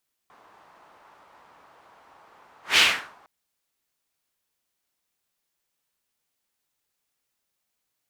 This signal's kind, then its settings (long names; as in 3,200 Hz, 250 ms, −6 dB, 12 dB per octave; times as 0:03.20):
pass-by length 2.96 s, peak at 0:02.48, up 0.17 s, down 0.43 s, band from 990 Hz, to 2,800 Hz, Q 2, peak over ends 38.5 dB